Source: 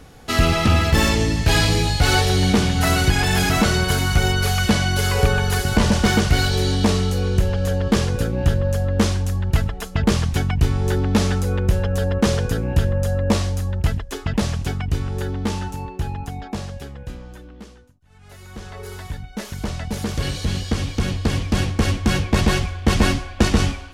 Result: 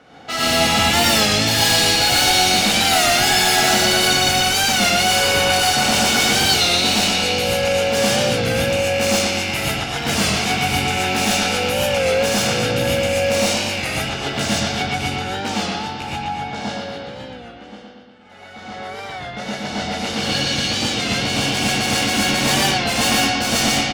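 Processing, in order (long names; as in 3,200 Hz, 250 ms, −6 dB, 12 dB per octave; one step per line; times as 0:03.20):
loose part that buzzes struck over −18 dBFS, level −15 dBFS
low-pass that shuts in the quiet parts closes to 2,400 Hz, open at −11.5 dBFS
high-pass filter 260 Hz 12 dB per octave
high-shelf EQ 4,000 Hz +11.5 dB
comb filter 1.4 ms, depth 38%
in parallel at −1 dB: brickwall limiter −13 dBFS, peak gain reduction 10.5 dB
on the sum: hard clipping −14.5 dBFS, distortion −9 dB
on a send: bucket-brigade delay 117 ms, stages 4,096, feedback 63%, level −3.5 dB
on the sum: reverb whose tail is shaped and stops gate 160 ms rising, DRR −5.5 dB
wow of a warped record 33 1/3 rpm, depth 100 cents
level −7 dB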